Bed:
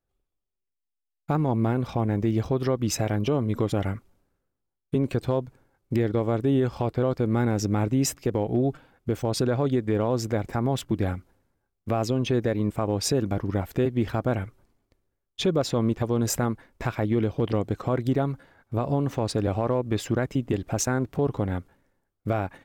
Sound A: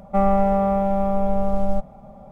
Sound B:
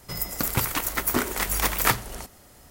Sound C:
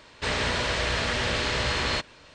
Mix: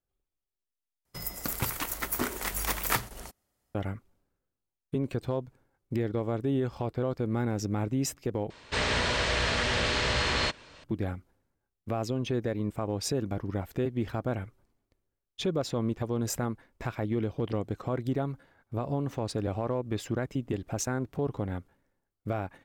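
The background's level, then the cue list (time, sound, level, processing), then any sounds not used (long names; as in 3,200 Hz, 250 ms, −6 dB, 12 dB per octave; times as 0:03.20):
bed −6 dB
0:01.05: overwrite with B −6.5 dB + noise gate −39 dBFS, range −20 dB
0:08.50: overwrite with C −1 dB
not used: A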